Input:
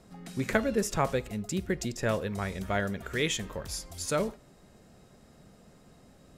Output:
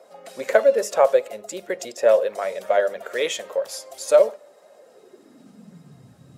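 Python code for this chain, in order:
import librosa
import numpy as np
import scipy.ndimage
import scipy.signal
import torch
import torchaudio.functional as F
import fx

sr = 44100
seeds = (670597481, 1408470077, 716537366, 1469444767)

y = fx.spec_quant(x, sr, step_db=15)
y = fx.filter_sweep_highpass(y, sr, from_hz=560.0, to_hz=120.0, start_s=4.8, end_s=6.04, q=5.9)
y = fx.hum_notches(y, sr, base_hz=50, count=4)
y = F.gain(torch.from_numpy(y), 3.5).numpy()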